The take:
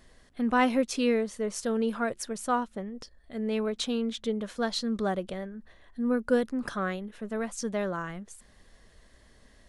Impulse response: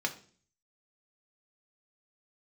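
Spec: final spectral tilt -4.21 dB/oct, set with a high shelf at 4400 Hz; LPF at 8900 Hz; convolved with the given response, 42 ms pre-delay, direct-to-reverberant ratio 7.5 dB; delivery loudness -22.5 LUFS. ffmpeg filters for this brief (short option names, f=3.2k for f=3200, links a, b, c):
-filter_complex "[0:a]lowpass=8.9k,highshelf=f=4.4k:g=-7,asplit=2[a][b];[1:a]atrim=start_sample=2205,adelay=42[c];[b][c]afir=irnorm=-1:irlink=0,volume=-13dB[d];[a][d]amix=inputs=2:normalize=0,volume=7.5dB"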